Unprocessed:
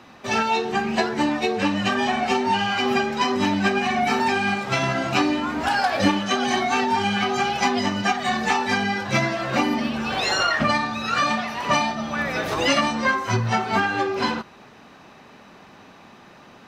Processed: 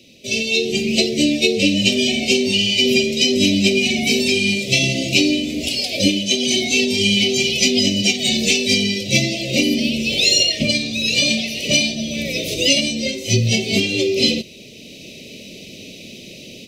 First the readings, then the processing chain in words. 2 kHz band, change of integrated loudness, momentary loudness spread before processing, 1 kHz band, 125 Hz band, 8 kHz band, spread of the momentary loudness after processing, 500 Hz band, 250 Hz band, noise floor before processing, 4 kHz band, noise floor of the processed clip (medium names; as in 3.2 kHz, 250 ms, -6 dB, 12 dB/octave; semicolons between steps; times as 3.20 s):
+2.5 dB, +5.5 dB, 3 LU, -20.0 dB, +5.5 dB, +13.5 dB, 9 LU, +4.5 dB, +5.5 dB, -48 dBFS, +12.0 dB, -39 dBFS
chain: inverse Chebyshev band-stop 810–1700 Hz, stop band 40 dB; treble shelf 2.2 kHz +10 dB; level rider; trim -1 dB